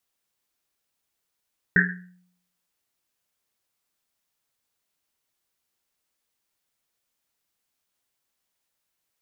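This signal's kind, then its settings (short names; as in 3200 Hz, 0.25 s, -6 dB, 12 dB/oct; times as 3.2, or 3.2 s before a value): Risset drum, pitch 180 Hz, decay 0.69 s, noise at 1700 Hz, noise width 360 Hz, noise 65%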